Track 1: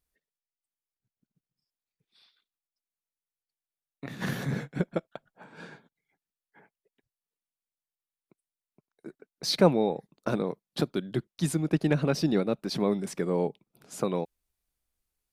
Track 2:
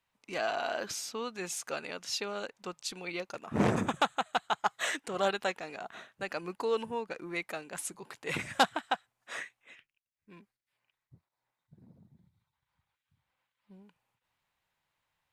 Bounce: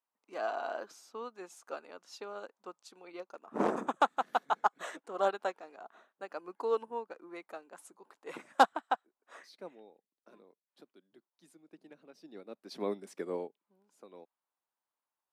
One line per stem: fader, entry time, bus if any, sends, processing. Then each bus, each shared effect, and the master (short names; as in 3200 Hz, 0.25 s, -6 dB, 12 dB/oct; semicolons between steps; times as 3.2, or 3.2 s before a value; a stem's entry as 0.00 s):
-1.5 dB, 0.00 s, no send, auto duck -15 dB, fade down 0.35 s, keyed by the second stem
+2.5 dB, 0.00 s, no send, resonant high shelf 1600 Hz -7.5 dB, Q 1.5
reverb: off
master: HPF 250 Hz 24 dB/oct; upward expander 1.5:1, over -44 dBFS